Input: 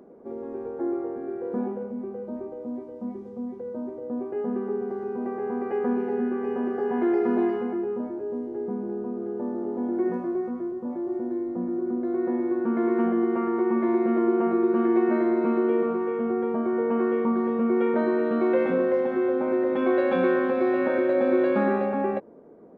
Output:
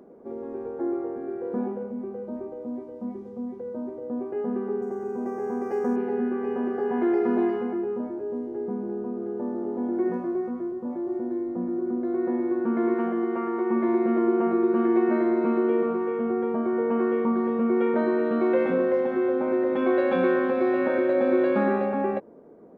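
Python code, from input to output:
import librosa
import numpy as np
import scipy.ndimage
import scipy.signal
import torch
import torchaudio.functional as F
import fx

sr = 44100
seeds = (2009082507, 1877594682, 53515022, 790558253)

y = fx.resample_linear(x, sr, factor=6, at=(4.82, 5.96))
y = fx.low_shelf(y, sr, hz=220.0, db=-9.0, at=(12.94, 13.7))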